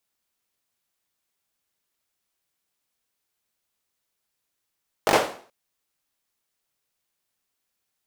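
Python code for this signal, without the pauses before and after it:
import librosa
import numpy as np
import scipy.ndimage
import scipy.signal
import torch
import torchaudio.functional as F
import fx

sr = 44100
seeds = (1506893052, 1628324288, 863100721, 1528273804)

y = fx.drum_clap(sr, seeds[0], length_s=0.43, bursts=4, spacing_ms=20, hz=570.0, decay_s=0.45)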